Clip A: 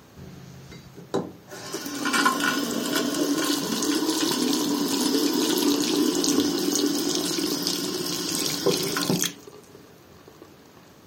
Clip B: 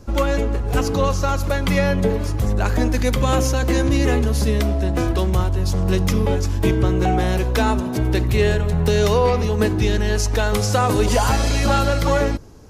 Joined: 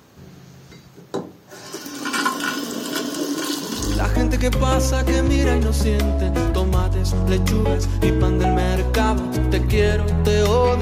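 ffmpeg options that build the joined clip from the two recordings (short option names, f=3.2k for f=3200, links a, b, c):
-filter_complex "[0:a]apad=whole_dur=10.81,atrim=end=10.81,atrim=end=4.14,asetpts=PTS-STARTPTS[a];[1:a]atrim=start=2.35:end=9.42,asetpts=PTS-STARTPTS[b];[a][b]acrossfade=d=0.4:c1=qsin:c2=qsin"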